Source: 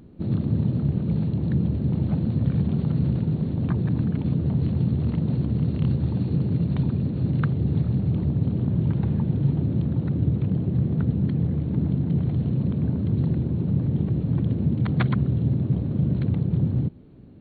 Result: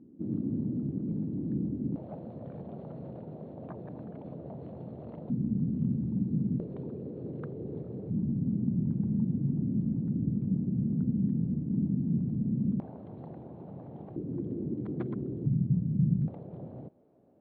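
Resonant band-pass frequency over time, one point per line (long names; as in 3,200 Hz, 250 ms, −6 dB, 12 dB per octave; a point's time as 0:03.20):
resonant band-pass, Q 3
280 Hz
from 0:01.96 630 Hz
from 0:05.30 220 Hz
from 0:06.60 450 Hz
from 0:08.10 220 Hz
from 0:12.80 740 Hz
from 0:14.16 350 Hz
from 0:15.46 170 Hz
from 0:16.28 650 Hz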